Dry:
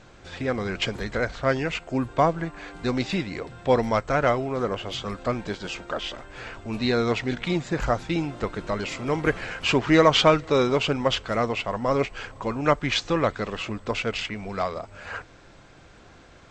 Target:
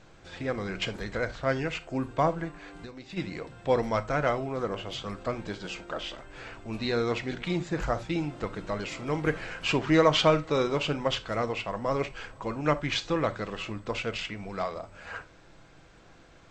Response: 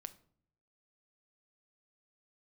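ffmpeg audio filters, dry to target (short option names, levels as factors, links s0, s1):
-filter_complex "[0:a]asplit=3[s0][s1][s2];[s0]afade=t=out:st=2.56:d=0.02[s3];[s1]acompressor=threshold=0.0178:ratio=10,afade=t=in:st=2.56:d=0.02,afade=t=out:st=3.16:d=0.02[s4];[s2]afade=t=in:st=3.16:d=0.02[s5];[s3][s4][s5]amix=inputs=3:normalize=0[s6];[1:a]atrim=start_sample=2205,afade=t=out:st=0.14:d=0.01,atrim=end_sample=6615[s7];[s6][s7]afir=irnorm=-1:irlink=0"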